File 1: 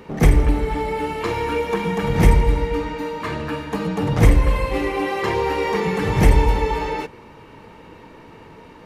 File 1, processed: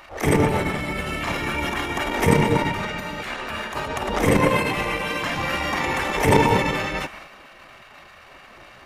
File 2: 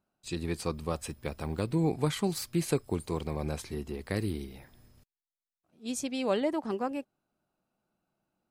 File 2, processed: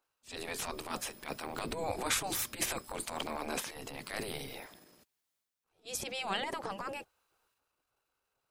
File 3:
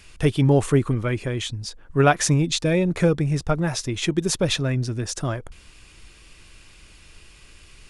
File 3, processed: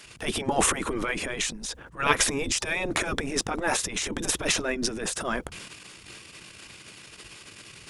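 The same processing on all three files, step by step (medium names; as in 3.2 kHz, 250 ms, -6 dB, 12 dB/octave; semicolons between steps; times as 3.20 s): transient shaper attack -10 dB, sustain +7 dB; spectral gate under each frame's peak -10 dB weak; dynamic bell 4.4 kHz, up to -6 dB, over -55 dBFS, Q 6.3; trim +4.5 dB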